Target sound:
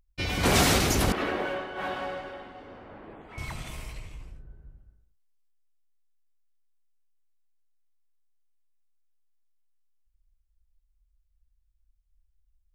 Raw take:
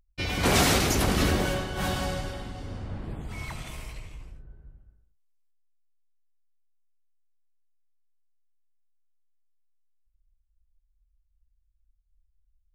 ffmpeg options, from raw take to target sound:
-filter_complex "[0:a]asettb=1/sr,asplit=3[s0][s1][s2];[s0]atrim=end=1.124[s3];[s1]atrim=start=1.12:end=3.38,asetpts=PTS-STARTPTS,afade=t=in:d=0.004:c=qsin,afade=t=out:st=2.256:d=0.004:c=qsin,acrossover=split=290 2900:gain=0.0891 1 0.0708[s4][s5][s6];[s4][s5][s6]amix=inputs=3:normalize=0[s7];[s2]atrim=start=3.376[s8];[s3][s7]acrossfade=d=0.004:c1=hsin:c2=qsin[s9];[s9][s8]acrossfade=d=0.004:c1=qsin:c2=hsin"

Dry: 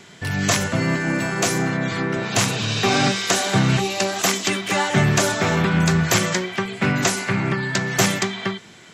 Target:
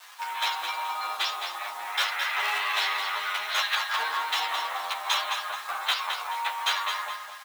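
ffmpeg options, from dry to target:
-filter_complex "[0:a]asetrate=23361,aresample=44100,atempo=1.88775,acrossover=split=1500[s0][s1];[s0]asoftclip=type=tanh:threshold=0.133[s2];[s2][s1]amix=inputs=2:normalize=0,highshelf=f=8100:g=-10,asplit=2[s3][s4];[s4]aeval=exprs='(mod(5.62*val(0)+1,2)-1)/5.62':c=same,volume=0.251[s5];[s3][s5]amix=inputs=2:normalize=0,acrusher=bits=6:mix=0:aa=0.000001,asplit=2[s6][s7];[s7]adelay=20,volume=0.316[s8];[s6][s8]amix=inputs=2:normalize=0,atempo=1.2,highpass=f=830:w=0.5412,highpass=f=830:w=1.3066,aecho=1:1:215|430|645|860:0.447|0.152|0.0516|0.0176,asplit=2[s9][s10];[s10]adelay=10.4,afreqshift=0.49[s11];[s9][s11]amix=inputs=2:normalize=1"

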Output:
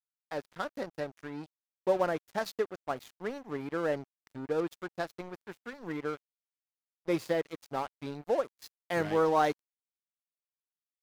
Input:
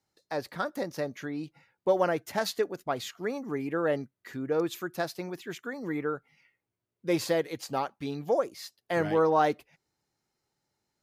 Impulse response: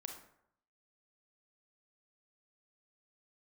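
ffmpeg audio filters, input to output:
-af "asetnsamples=n=441:p=0,asendcmd='8.62 highshelf g 3.5',highshelf=f=2900:g=-4.5,aeval=exprs='sgn(val(0))*max(abs(val(0))-0.01,0)':c=same,volume=0.841"

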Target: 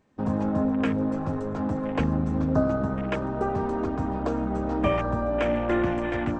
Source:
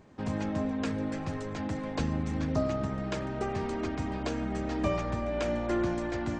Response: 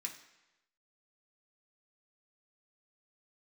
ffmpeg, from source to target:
-filter_complex "[0:a]acontrast=68,asplit=2[s0][s1];[1:a]atrim=start_sample=2205[s2];[s1][s2]afir=irnorm=-1:irlink=0,volume=0.473[s3];[s0][s3]amix=inputs=2:normalize=0,afwtdn=0.0251"

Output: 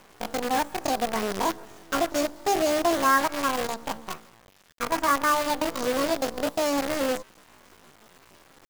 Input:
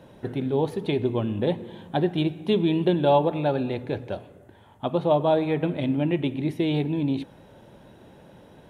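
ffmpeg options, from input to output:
-af "asetrate=83250,aresample=44100,atempo=0.529732,acrusher=bits=5:dc=4:mix=0:aa=0.000001,volume=0.794"

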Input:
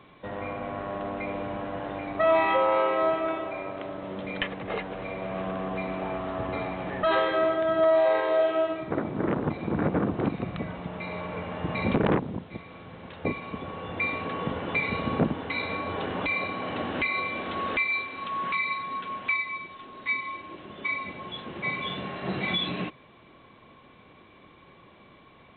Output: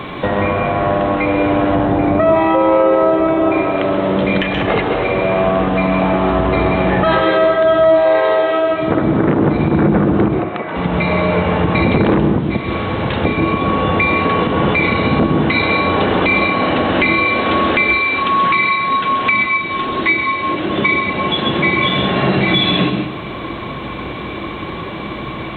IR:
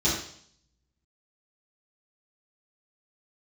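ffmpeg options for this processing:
-filter_complex "[0:a]asettb=1/sr,asplit=3[s0][s1][s2];[s0]atrim=end=1.754[s3];[s1]atrim=start=1.75:end=3.52,asetpts=PTS-STARTPTS,afade=t=in:d=0.004:c=qsin,afade=t=out:st=1.766:d=0.004:c=qsin,tiltshelf=f=1100:g=6[s4];[s2]atrim=start=3.516[s5];[s3][s4]acrossfade=d=0.004:c1=hsin:c2=qsin[s6];[s6][s5]acrossfade=d=0.004:c1=qsin:c2=hsin,acompressor=threshold=0.00708:ratio=3,asplit=3[s7][s8][s9];[s7]afade=t=out:st=10.24:d=0.02[s10];[s8]highpass=470,lowpass=2300,afade=t=in:st=10.24:d=0.02,afade=t=out:st=10.74:d=0.02[s11];[s9]afade=t=in:st=10.74:d=0.02[s12];[s10][s11][s12]amix=inputs=3:normalize=0,asplit=2[s13][s14];[1:a]atrim=start_sample=2205,adelay=124[s15];[s14][s15]afir=irnorm=-1:irlink=0,volume=0.126[s16];[s13][s16]amix=inputs=2:normalize=0,alimiter=level_in=28.2:limit=0.891:release=50:level=0:latency=1,volume=0.708"

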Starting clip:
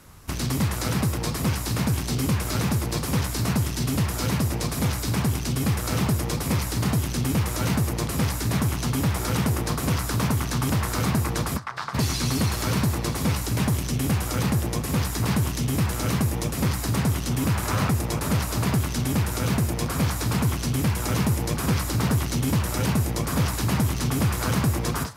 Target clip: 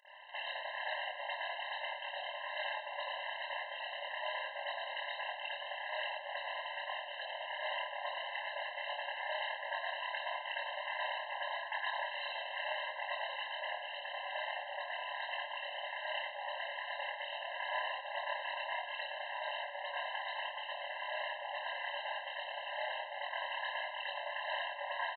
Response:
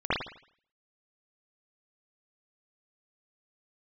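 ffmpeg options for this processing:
-filter_complex "[0:a]tremolo=f=33:d=0.919,acompressor=threshold=0.0398:ratio=6,aresample=8000,asoftclip=type=tanh:threshold=0.0237,aresample=44100,tiltshelf=f=1200:g=-5[s0];[1:a]atrim=start_sample=2205,asetrate=48510,aresample=44100[s1];[s0][s1]afir=irnorm=-1:irlink=0,afftfilt=real='re*eq(mod(floor(b*sr/1024/530),2),1)':imag='im*eq(mod(floor(b*sr/1024/530),2),1)':win_size=1024:overlap=0.75,volume=0.708"

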